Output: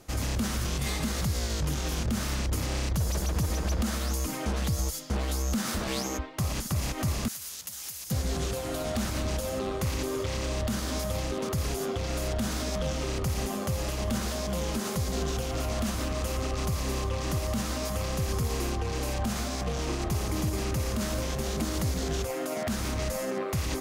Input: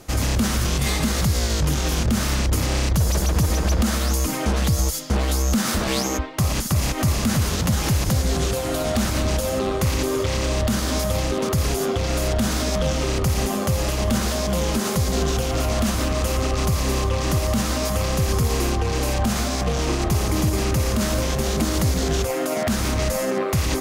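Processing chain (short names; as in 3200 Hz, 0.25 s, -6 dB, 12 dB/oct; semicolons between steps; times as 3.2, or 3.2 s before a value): 7.28–8.11 pre-emphasis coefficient 0.97; gain -8.5 dB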